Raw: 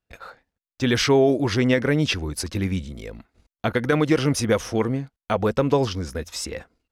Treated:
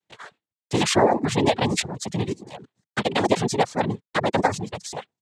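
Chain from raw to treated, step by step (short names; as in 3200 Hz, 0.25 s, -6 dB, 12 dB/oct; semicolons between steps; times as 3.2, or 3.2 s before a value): speed glide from 110% -> 155%; noise vocoder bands 6; reverb removal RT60 0.51 s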